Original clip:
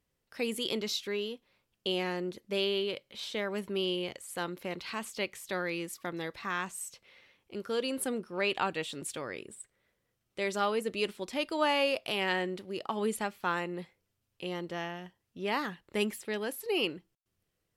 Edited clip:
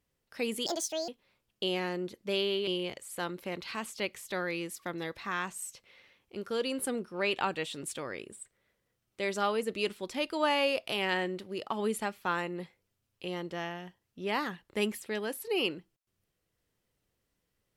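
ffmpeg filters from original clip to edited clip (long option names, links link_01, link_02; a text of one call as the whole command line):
ffmpeg -i in.wav -filter_complex "[0:a]asplit=4[link_01][link_02][link_03][link_04];[link_01]atrim=end=0.664[link_05];[link_02]atrim=start=0.66:end=1.32,asetpts=PTS-STARTPTS,asetrate=68796,aresample=44100[link_06];[link_03]atrim=start=1.316:end=2.912[link_07];[link_04]atrim=start=3.858[link_08];[link_05][link_06]acrossfade=duration=0.004:curve1=hsin:curve2=hsin[link_09];[link_09][link_07]acrossfade=duration=0.004:curve1=hsin:curve2=hsin[link_10];[link_10][link_08]acrossfade=duration=0.004:curve1=hsin:curve2=hsin" out.wav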